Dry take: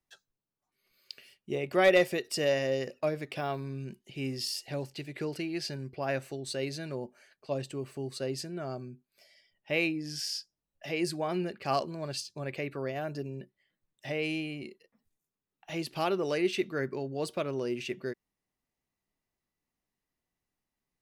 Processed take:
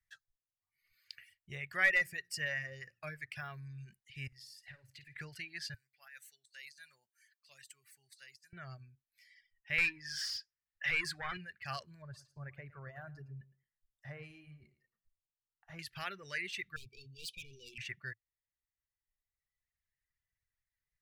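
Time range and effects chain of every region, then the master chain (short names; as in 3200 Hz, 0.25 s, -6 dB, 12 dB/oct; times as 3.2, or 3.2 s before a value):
1.77–3.69 bell 3600 Hz -8 dB 0.38 oct + de-hum 58.49 Hz, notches 6
4.27–5.19 compressor 12:1, threshold -44 dBFS + flutter echo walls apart 9.1 m, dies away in 0.39 s
5.74–8.53 differentiator + negative-ratio compressor -50 dBFS, ratio -0.5
9.78–11.37 overdrive pedal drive 19 dB, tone 2400 Hz, clips at -15.5 dBFS + bell 650 Hz -11.5 dB 0.2 oct
12.02–15.79 resonant high shelf 1600 Hz -14 dB, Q 1.5 + feedback echo 0.111 s, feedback 17%, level -9.5 dB
16.76–17.78 weighting filter D + hard clip -33.5 dBFS + brick-wall FIR band-stop 520–2300 Hz
whole clip: tilt shelf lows +7 dB, about 730 Hz; reverb removal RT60 1.6 s; EQ curve 110 Hz 0 dB, 280 Hz -28 dB, 960 Hz -9 dB, 1800 Hz +15 dB, 2700 Hz +5 dB; gain -4 dB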